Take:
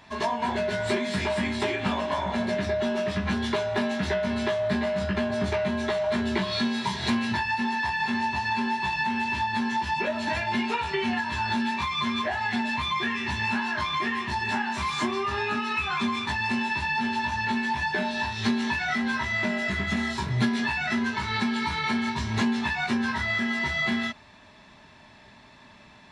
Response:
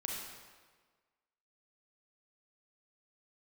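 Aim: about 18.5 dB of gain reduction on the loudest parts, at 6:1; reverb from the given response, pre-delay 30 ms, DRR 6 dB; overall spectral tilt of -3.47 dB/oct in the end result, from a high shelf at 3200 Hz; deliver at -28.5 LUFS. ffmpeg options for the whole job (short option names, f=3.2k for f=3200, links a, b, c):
-filter_complex "[0:a]highshelf=f=3.2k:g=-6.5,acompressor=threshold=-42dB:ratio=6,asplit=2[a][b];[1:a]atrim=start_sample=2205,adelay=30[c];[b][c]afir=irnorm=-1:irlink=0,volume=-7.5dB[d];[a][d]amix=inputs=2:normalize=0,volume=13.5dB"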